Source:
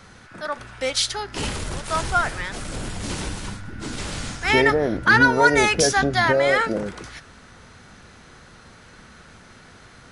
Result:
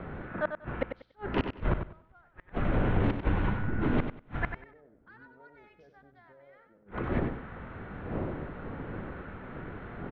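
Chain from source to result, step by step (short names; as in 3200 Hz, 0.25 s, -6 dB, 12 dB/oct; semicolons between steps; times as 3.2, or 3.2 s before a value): Wiener smoothing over 9 samples; wind noise 370 Hz -38 dBFS; flipped gate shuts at -19 dBFS, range -42 dB; Gaussian blur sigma 2.9 samples; on a send: feedback echo 95 ms, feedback 21%, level -8 dB; on the sum: gain +4 dB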